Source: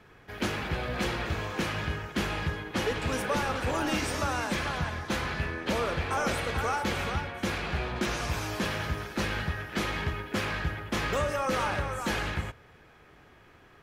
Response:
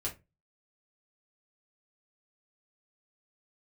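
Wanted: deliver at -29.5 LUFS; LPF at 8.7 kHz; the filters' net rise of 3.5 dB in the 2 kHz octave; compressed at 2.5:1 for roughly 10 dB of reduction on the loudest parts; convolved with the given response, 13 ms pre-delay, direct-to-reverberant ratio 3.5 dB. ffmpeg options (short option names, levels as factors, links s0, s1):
-filter_complex "[0:a]lowpass=8700,equalizer=f=2000:t=o:g=4.5,acompressor=threshold=0.01:ratio=2.5,asplit=2[s0][s1];[1:a]atrim=start_sample=2205,adelay=13[s2];[s1][s2]afir=irnorm=-1:irlink=0,volume=0.531[s3];[s0][s3]amix=inputs=2:normalize=0,volume=2.24"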